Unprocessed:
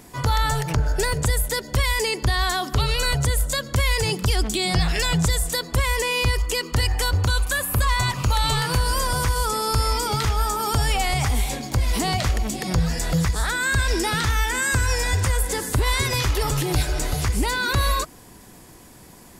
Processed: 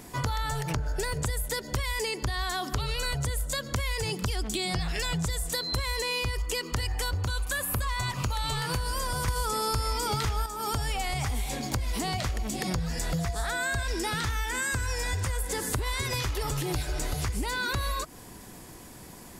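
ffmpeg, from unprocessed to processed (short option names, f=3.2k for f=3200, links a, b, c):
-filter_complex "[0:a]asettb=1/sr,asplit=3[a][b][c];[a]atrim=end=5.544[d];[b]atrim=start=5.54:end=6.19,asetpts=PTS-STARTPTS,afade=t=in:d=0.004:c=qsin,afade=t=out:st=0.646:d=0.004:c=qsin,aeval=exprs='val(0)+0.0447*sin(2*PI*4100*n/s)':c=same[e];[c]atrim=start=6.186[f];[d][e]acrossfade=d=0.004:c1=hsin:c2=qsin[g];[g][f]acrossfade=d=0.004:c1=qsin:c2=hsin,asettb=1/sr,asplit=3[h][i][j];[h]atrim=end=13.194[k];[i]atrim=start=13.19:end=13.83,asetpts=PTS-STARTPTS,afade=t=in:d=0.004:c=qsin,afade=t=out:st=0.636:d=0.004:c=qsin,aeval=exprs='val(0)+0.0398*sin(2*PI*690*n/s)':c=same[l];[j]atrim=start=13.826[m];[k][l]acrossfade=d=0.004:c1=hsin:c2=qsin[n];[n][m]acrossfade=d=0.004:c1=qsin:c2=hsin,asplit=3[o][p][q];[o]atrim=end=9.282[r];[p]atrim=start=9.278:end=10.462,asetpts=PTS-STARTPTS,volume=9dB[s];[q]atrim=start=10.458[t];[r][s]acrossfade=d=0.004:c1=hsin:c2=hsin[u];[u][t]acrossfade=d=0.004:c1=hsin:c2=hsin,acompressor=threshold=-27dB:ratio=6"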